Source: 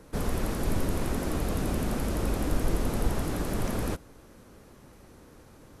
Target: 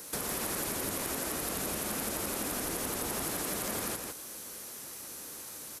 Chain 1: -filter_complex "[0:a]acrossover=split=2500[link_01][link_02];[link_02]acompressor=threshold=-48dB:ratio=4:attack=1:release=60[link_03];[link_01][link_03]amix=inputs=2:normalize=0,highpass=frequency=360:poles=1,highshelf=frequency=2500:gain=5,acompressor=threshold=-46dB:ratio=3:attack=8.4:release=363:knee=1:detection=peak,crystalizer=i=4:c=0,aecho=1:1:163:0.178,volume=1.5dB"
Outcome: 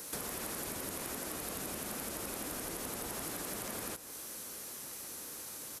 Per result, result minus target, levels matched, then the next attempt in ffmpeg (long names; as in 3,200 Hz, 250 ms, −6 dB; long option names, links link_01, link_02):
echo-to-direct −10 dB; downward compressor: peak gain reduction +4.5 dB
-filter_complex "[0:a]acrossover=split=2500[link_01][link_02];[link_02]acompressor=threshold=-48dB:ratio=4:attack=1:release=60[link_03];[link_01][link_03]amix=inputs=2:normalize=0,highpass=frequency=360:poles=1,highshelf=frequency=2500:gain=5,acompressor=threshold=-46dB:ratio=3:attack=8.4:release=363:knee=1:detection=peak,crystalizer=i=4:c=0,aecho=1:1:163:0.562,volume=1.5dB"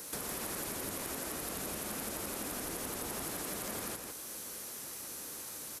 downward compressor: peak gain reduction +4.5 dB
-filter_complex "[0:a]acrossover=split=2500[link_01][link_02];[link_02]acompressor=threshold=-48dB:ratio=4:attack=1:release=60[link_03];[link_01][link_03]amix=inputs=2:normalize=0,highpass=frequency=360:poles=1,highshelf=frequency=2500:gain=5,acompressor=threshold=-39dB:ratio=3:attack=8.4:release=363:knee=1:detection=peak,crystalizer=i=4:c=0,aecho=1:1:163:0.562,volume=1.5dB"